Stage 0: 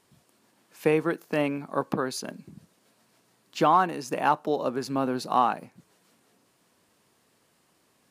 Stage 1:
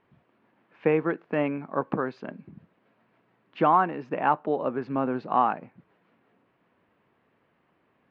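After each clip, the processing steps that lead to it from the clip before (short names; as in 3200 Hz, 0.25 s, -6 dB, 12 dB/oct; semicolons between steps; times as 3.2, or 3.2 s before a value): LPF 2500 Hz 24 dB/oct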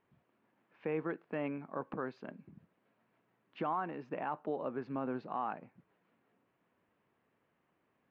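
limiter -17.5 dBFS, peak gain reduction 8 dB; gain -9 dB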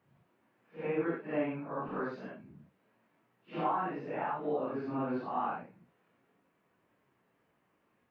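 phase scrambler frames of 0.2 s; gain +3.5 dB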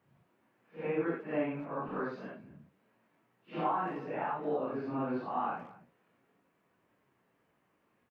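speakerphone echo 0.22 s, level -19 dB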